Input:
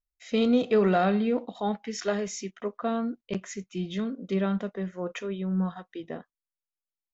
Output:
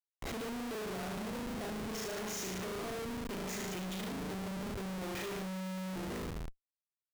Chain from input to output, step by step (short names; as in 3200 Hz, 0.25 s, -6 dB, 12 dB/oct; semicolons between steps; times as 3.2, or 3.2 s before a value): tilt +1.5 dB/oct; notches 60/120/180 Hz; compressor 20:1, threshold -35 dBFS, peak gain reduction 16 dB; flutter echo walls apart 6.4 m, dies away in 1.2 s; rotary speaker horn 0.7 Hz, later 6 Hz, at 5.77; reverb, pre-delay 81 ms, DRR 15.5 dB; Schmitt trigger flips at -43.5 dBFS; gain -4 dB